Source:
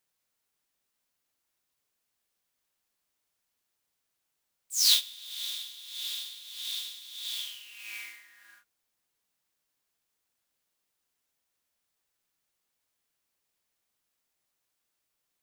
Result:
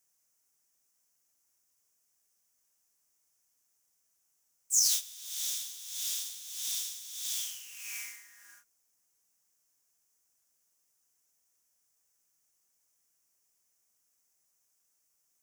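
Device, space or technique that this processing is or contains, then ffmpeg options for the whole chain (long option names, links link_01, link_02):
over-bright horn tweeter: -af "highshelf=frequency=4900:width_type=q:width=3:gain=7,alimiter=limit=-13dB:level=0:latency=1:release=392,volume=-1.5dB"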